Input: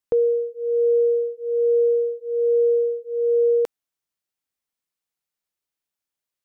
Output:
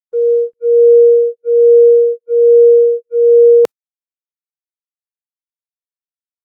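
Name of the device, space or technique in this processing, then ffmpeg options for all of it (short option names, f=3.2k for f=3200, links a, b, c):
video call: -af "highpass=110,dynaudnorm=f=110:g=5:m=10.5dB,agate=range=-50dB:threshold=-17dB:ratio=16:detection=peak,volume=2dB" -ar 48000 -c:a libopus -b:a 24k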